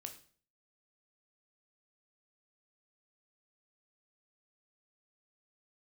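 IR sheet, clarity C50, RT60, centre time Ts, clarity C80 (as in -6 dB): 11.0 dB, 0.45 s, 13 ms, 15.0 dB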